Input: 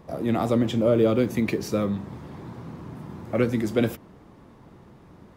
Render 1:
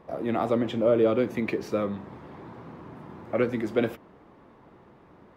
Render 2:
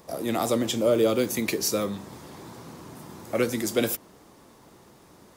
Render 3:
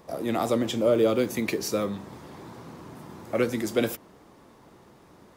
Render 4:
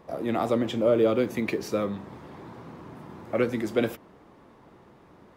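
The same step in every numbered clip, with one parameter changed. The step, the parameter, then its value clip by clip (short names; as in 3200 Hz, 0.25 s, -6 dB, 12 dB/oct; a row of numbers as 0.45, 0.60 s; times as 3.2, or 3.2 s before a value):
tone controls, treble: -13, +15, +7, -4 dB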